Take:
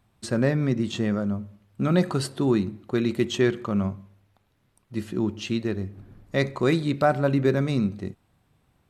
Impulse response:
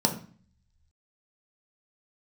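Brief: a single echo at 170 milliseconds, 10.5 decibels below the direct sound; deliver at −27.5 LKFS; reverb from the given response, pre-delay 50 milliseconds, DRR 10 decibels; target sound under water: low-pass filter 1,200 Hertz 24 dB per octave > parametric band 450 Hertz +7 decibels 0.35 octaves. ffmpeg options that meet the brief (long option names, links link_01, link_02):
-filter_complex "[0:a]aecho=1:1:170:0.299,asplit=2[link_01][link_02];[1:a]atrim=start_sample=2205,adelay=50[link_03];[link_02][link_03]afir=irnorm=-1:irlink=0,volume=-21dB[link_04];[link_01][link_04]amix=inputs=2:normalize=0,lowpass=frequency=1200:width=0.5412,lowpass=frequency=1200:width=1.3066,equalizer=frequency=450:width_type=o:width=0.35:gain=7,volume=-5dB"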